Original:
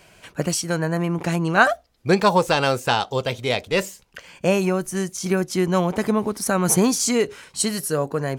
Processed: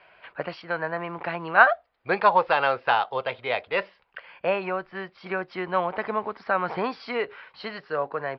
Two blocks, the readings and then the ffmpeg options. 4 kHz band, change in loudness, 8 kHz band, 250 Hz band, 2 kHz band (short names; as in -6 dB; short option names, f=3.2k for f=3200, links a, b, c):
-9.5 dB, -4.0 dB, under -40 dB, -14.5 dB, 0.0 dB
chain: -filter_complex "[0:a]acrusher=bits=8:mode=log:mix=0:aa=0.000001,aresample=11025,aresample=44100,acrossover=split=560 2600:gain=0.112 1 0.0708[a][b][c];[a][b][c]amix=inputs=3:normalize=0,volume=1.5dB"